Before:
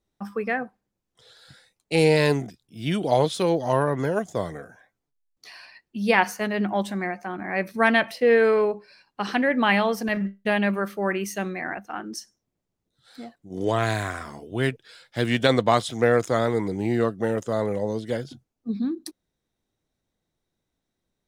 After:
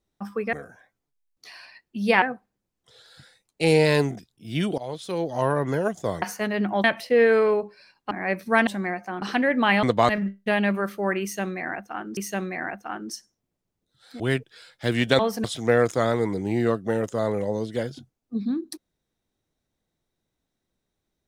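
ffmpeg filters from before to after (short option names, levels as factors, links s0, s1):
-filter_complex "[0:a]asplit=15[s0][s1][s2][s3][s4][s5][s6][s7][s8][s9][s10][s11][s12][s13][s14];[s0]atrim=end=0.532[s15];[s1]atrim=start=4.528:end=6.222[s16];[s2]atrim=start=0.528:end=3.09,asetpts=PTS-STARTPTS,afade=t=out:st=2.558:d=0.004:c=hsin:silence=0.1[s17];[s3]atrim=start=3.09:end=4.532,asetpts=PTS-STARTPTS,afade=t=in:d=0.82:silence=0.1[s18];[s4]atrim=start=6.218:end=6.842[s19];[s5]atrim=start=7.948:end=9.222[s20];[s6]atrim=start=7.388:end=7.952[s21];[s7]atrim=start=6.838:end=7.392[s22];[s8]atrim=start=9.218:end=9.832[s23];[s9]atrim=start=15.518:end=15.782[s24];[s10]atrim=start=10.078:end=12.162[s25];[s11]atrim=start=11.208:end=13.242[s26];[s12]atrim=start=14.528:end=15.522[s27];[s13]atrim=start=9.828:end=10.082[s28];[s14]atrim=start=15.778[s29];[s15][s16]acrossfade=d=0.004:c1=hsin:c2=hsin[s30];[s17][s18]concat=n=2:v=0:a=1[s31];[s30][s31]acrossfade=d=0.004:c1=hsin:c2=hsin[s32];[s32][s19]acrossfade=d=0.004:c1=hsin:c2=hsin[s33];[s33][s20]acrossfade=d=0.004:c1=hsin:c2=hsin[s34];[s34][s21]acrossfade=d=0.004:c1=hsin:c2=hsin[s35];[s35][s22]acrossfade=d=0.004:c1=hsin:c2=hsin[s36];[s36][s23]acrossfade=d=0.004:c1=hsin:c2=hsin[s37];[s37][s24]acrossfade=d=0.004:c1=hsin:c2=hsin[s38];[s38][s25]acrossfade=d=0.004:c1=hsin:c2=hsin[s39];[s39][s26]acrossfade=d=0.004:c1=hsin:c2=hsin[s40];[s40][s27]acrossfade=d=0.004:c1=hsin:c2=hsin[s41];[s41][s28]acrossfade=d=0.004:c1=hsin:c2=hsin[s42];[s42][s29]acrossfade=d=0.004:c1=hsin:c2=hsin"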